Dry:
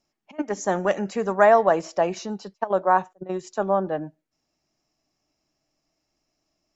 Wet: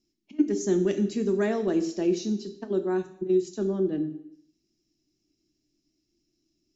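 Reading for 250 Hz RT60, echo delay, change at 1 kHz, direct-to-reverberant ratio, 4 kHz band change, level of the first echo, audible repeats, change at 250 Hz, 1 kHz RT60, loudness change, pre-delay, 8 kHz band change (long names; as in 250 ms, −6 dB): 0.70 s, no echo audible, −20.0 dB, 8.0 dB, −1.0 dB, no echo audible, no echo audible, +5.0 dB, 0.70 s, −4.0 dB, 3 ms, can't be measured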